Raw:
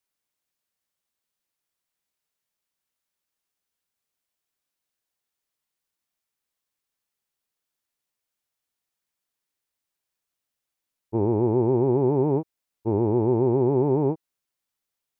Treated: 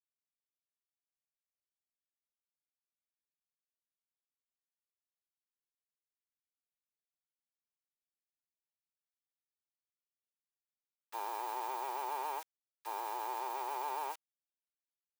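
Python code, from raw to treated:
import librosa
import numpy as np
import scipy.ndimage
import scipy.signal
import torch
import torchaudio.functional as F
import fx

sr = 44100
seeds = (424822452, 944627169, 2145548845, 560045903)

y = fx.delta_hold(x, sr, step_db=-47.0)
y = scipy.signal.sosfilt(scipy.signal.butter(4, 1100.0, 'highpass', fs=sr, output='sos'), y)
y = y * librosa.db_to_amplitude(6.0)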